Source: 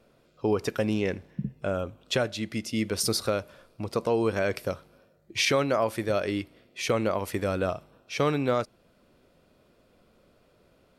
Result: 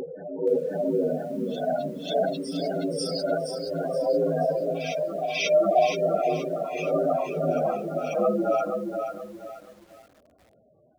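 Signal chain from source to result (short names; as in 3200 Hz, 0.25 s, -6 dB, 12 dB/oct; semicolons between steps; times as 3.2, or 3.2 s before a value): phase scrambler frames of 0.2 s; bell 650 Hz +4 dB 0.73 oct; notches 60/120/180/240/300/360/420/480 Hz; spectral gate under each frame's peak -10 dB strong; frequency shift +61 Hz; on a send: reverse echo 0.539 s -9.5 dB; on the sum: lo-fi delay 0.475 s, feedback 35%, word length 9-bit, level -6 dB; gain +1.5 dB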